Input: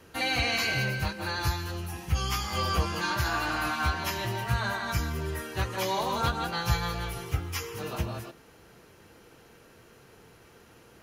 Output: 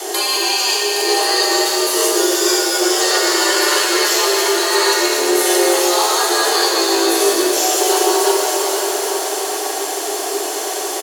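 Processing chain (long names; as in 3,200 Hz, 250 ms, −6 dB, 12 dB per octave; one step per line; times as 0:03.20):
graphic EQ with 10 bands 125 Hz +7 dB, 250 Hz −12 dB, 500 Hz +4 dB, 1,000 Hz −7 dB, 2,000 Hz −7 dB, 4,000 Hz +3 dB, 8,000 Hz +12 dB
compressor whose output falls as the input rises −38 dBFS, ratio −1
frequency shifter +280 Hz
on a send: single-tap delay 816 ms −13.5 dB
on the sum: boost into a limiter +29 dB
reverb with rising layers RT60 3.4 s, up +7 semitones, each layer −8 dB, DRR −2.5 dB
level −9 dB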